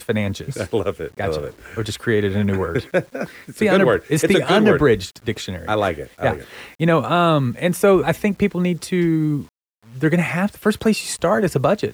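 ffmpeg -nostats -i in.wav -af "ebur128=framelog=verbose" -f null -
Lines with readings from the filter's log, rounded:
Integrated loudness:
  I:         -19.4 LUFS
  Threshold: -29.7 LUFS
Loudness range:
  LRA:         3.7 LU
  Threshold: -39.3 LUFS
  LRA low:   -21.8 LUFS
  LRA high:  -18.1 LUFS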